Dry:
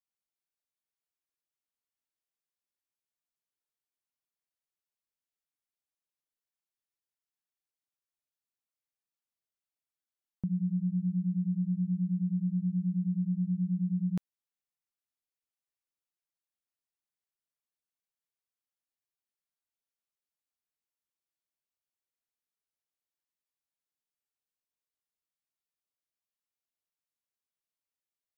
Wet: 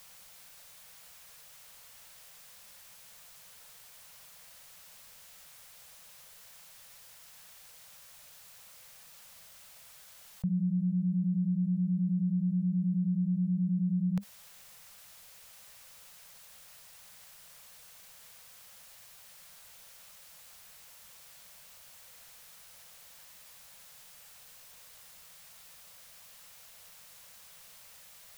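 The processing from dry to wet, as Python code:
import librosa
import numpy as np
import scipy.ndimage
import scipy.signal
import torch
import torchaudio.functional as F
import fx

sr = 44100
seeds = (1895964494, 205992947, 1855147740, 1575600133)

y = scipy.signal.sosfilt(scipy.signal.cheby1(3, 1.0, [200.0, 480.0], 'bandstop', fs=sr, output='sos'), x)
y = fx.env_flatten(y, sr, amount_pct=70)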